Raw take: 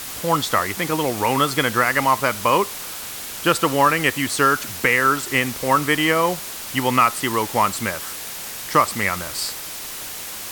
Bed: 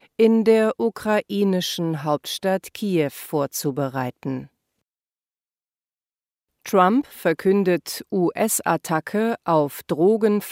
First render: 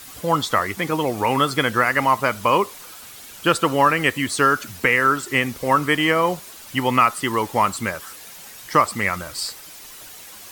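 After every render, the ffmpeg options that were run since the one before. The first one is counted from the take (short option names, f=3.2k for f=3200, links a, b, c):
-af "afftdn=nr=10:nf=-32"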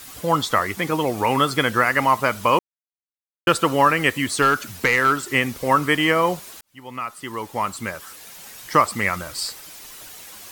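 -filter_complex "[0:a]asettb=1/sr,asplit=3[a][b][c];[a]atrim=end=4.424[d];[b]atrim=start=4.42:end=5.18,asetpts=PTS-STARTPTS,afade=t=in:d=0.004:c=qsin,afade=t=out:st=0.756:d=0.004:c=qsin,asoftclip=type=hard:threshold=-10.5dB[e];[c]atrim=start=5.176[f];[d][e]acrossfade=d=0.004:c1=hsin:c2=qsin[g];[g][f]acrossfade=d=0.004:c1=qsin:c2=hsin,asplit=4[h][i][j][k];[h]atrim=end=2.59,asetpts=PTS-STARTPTS,afade=t=out:st=2.586:d=0.004:c=hsin[l];[i]atrim=start=2.59:end=3.47,asetpts=PTS-STARTPTS,volume=0[m];[j]atrim=start=3.47:end=6.61,asetpts=PTS-STARTPTS,afade=t=in:d=0.004:c=hsin,afade=t=out:st=3.136:d=0.004:c=hsin[n];[k]atrim=start=6.61,asetpts=PTS-STARTPTS,afade=t=in:d=1.93[o];[l][m][n][o]concat=n=4:v=0:a=1"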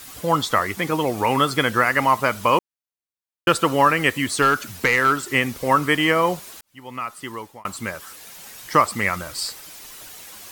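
-filter_complex "[0:a]asplit=2[a][b];[a]atrim=end=7.65,asetpts=PTS-STARTPTS,afade=t=out:st=7.25:d=0.4[c];[b]atrim=start=7.65,asetpts=PTS-STARTPTS,afade=t=in:d=0.004:c=hsin[d];[c][d]concat=n=2:v=0:a=1"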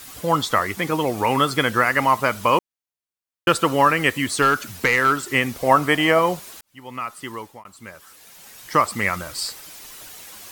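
-filter_complex "[0:a]asettb=1/sr,asplit=3[a][b][c];[a]atrim=end=5.564[d];[b]atrim=start=5.56:end=6.19,asetpts=PTS-STARTPTS,afade=t=in:d=0.004:c=qsin,afade=t=out:st=0.626:d=0.004:c=qsin,equalizer=f=700:t=o:w=0.46:g=10[e];[c]atrim=start=6.186[f];[d][e]acrossfade=d=0.004:c1=hsin:c2=qsin[g];[g][f]acrossfade=d=0.004:c1=qsin:c2=hsin,asplit=2[h][i];[h]atrim=end=7.64,asetpts=PTS-STARTPTS,afade=t=out:st=7.636:d=0.004:c=hsin:silence=0.158489[j];[i]atrim=start=7.64,asetpts=PTS-STARTPTS,afade=t=in:d=1.4:silence=0.158489[k];[j][k]concat=n=2:v=0:a=1"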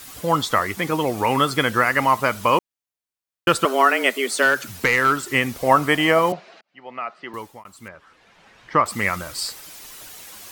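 -filter_complex "[0:a]asettb=1/sr,asplit=3[a][b][c];[a]atrim=end=3.654[d];[b]atrim=start=3.65:end=4.62,asetpts=PTS-STARTPTS,afade=t=in:d=0.004:c=qsin,afade=t=out:st=0.966:d=0.004:c=qsin,afreqshift=130[e];[c]atrim=start=4.616[f];[d][e]acrossfade=d=0.004:c1=hsin:c2=qsin[g];[g][f]acrossfade=d=0.004:c1=qsin:c2=hsin,asettb=1/sr,asplit=3[h][i][j];[h]atrim=end=6.324[k];[i]atrim=start=6.32:end=7.34,asetpts=PTS-STARTPTS,afade=t=in:d=0.004:c=qsin,afade=t=out:st=1.016:d=0.004:c=qsin,highpass=f=180:w=0.5412,highpass=f=180:w=1.3066,equalizer=f=270:t=q:w=4:g=-8,equalizer=f=680:t=q:w=4:g=9,equalizer=f=1k:t=q:w=4:g=-5,equalizer=f=3.4k:t=q:w=4:g=-7,lowpass=f=3.9k:w=0.5412,lowpass=f=3.9k:w=1.3066[l];[j]atrim=start=7.336[m];[k][l]acrossfade=d=0.004:c1=hsin:c2=qsin[n];[n][m]acrossfade=d=0.004:c1=qsin:c2=hsin,asettb=1/sr,asplit=3[o][p][q];[o]atrim=end=7.884[r];[p]atrim=start=7.88:end=8.86,asetpts=PTS-STARTPTS,afade=t=in:d=0.004:c=qsin,afade=t=out:st=0.976:d=0.004:c=qsin,lowpass=2.5k[s];[q]atrim=start=8.856[t];[r][s]acrossfade=d=0.004:c1=hsin:c2=qsin[u];[u][t]acrossfade=d=0.004:c1=qsin:c2=hsin"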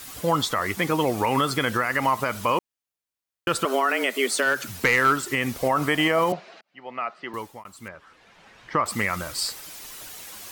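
-af "alimiter=limit=-12dB:level=0:latency=1:release=76"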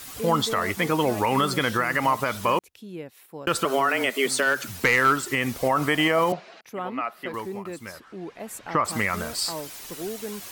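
-filter_complex "[1:a]volume=-16.5dB[a];[0:a][a]amix=inputs=2:normalize=0"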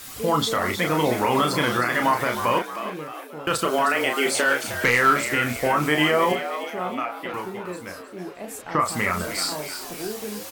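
-filter_complex "[0:a]asplit=2[a][b];[b]adelay=33,volume=-5dB[c];[a][c]amix=inputs=2:normalize=0,asplit=6[d][e][f][g][h][i];[e]adelay=311,afreqshift=92,volume=-10dB[j];[f]adelay=622,afreqshift=184,volume=-16.2dB[k];[g]adelay=933,afreqshift=276,volume=-22.4dB[l];[h]adelay=1244,afreqshift=368,volume=-28.6dB[m];[i]adelay=1555,afreqshift=460,volume=-34.8dB[n];[d][j][k][l][m][n]amix=inputs=6:normalize=0"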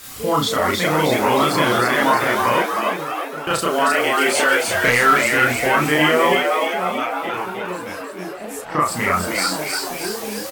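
-filter_complex "[0:a]asplit=2[a][b];[b]adelay=33,volume=-3.5dB[c];[a][c]amix=inputs=2:normalize=0,asplit=7[d][e][f][g][h][i][j];[e]adelay=313,afreqshift=100,volume=-4dB[k];[f]adelay=626,afreqshift=200,volume=-10dB[l];[g]adelay=939,afreqshift=300,volume=-16dB[m];[h]adelay=1252,afreqshift=400,volume=-22.1dB[n];[i]adelay=1565,afreqshift=500,volume=-28.1dB[o];[j]adelay=1878,afreqshift=600,volume=-34.1dB[p];[d][k][l][m][n][o][p]amix=inputs=7:normalize=0"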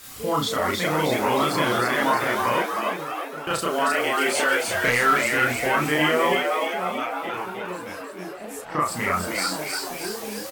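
-af "volume=-5dB"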